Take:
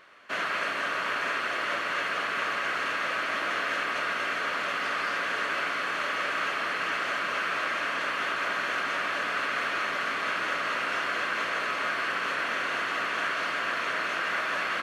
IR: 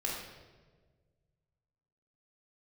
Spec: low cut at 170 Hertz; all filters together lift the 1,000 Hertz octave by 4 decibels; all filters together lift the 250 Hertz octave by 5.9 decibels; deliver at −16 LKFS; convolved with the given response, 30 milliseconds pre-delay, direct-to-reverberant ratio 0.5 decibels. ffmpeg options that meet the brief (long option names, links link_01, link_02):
-filter_complex "[0:a]highpass=170,equalizer=frequency=250:width_type=o:gain=8,equalizer=frequency=1000:width_type=o:gain=5,asplit=2[link_01][link_02];[1:a]atrim=start_sample=2205,adelay=30[link_03];[link_02][link_03]afir=irnorm=-1:irlink=0,volume=-4.5dB[link_04];[link_01][link_04]amix=inputs=2:normalize=0,volume=7dB"